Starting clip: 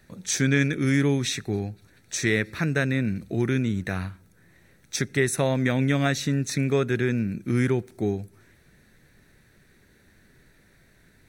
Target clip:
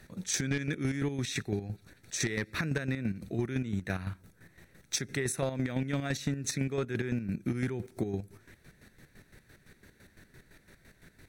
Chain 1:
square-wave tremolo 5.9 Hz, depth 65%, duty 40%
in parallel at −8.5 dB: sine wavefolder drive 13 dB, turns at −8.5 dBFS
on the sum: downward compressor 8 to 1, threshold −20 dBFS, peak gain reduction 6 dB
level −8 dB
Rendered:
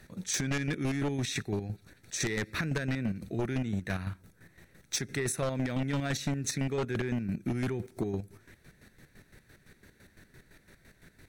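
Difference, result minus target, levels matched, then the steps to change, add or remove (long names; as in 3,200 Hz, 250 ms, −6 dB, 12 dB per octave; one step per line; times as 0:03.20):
sine wavefolder: distortion +12 dB
change: sine wavefolder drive 13 dB, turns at −1 dBFS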